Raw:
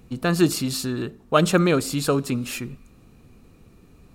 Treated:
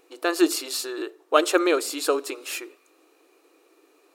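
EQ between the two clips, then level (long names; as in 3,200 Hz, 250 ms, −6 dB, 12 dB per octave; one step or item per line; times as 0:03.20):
linear-phase brick-wall high-pass 290 Hz
0.0 dB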